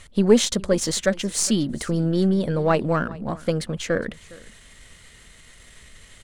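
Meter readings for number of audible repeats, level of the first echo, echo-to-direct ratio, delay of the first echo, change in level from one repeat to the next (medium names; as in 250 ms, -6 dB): 1, -21.5 dB, -21.5 dB, 410 ms, no regular repeats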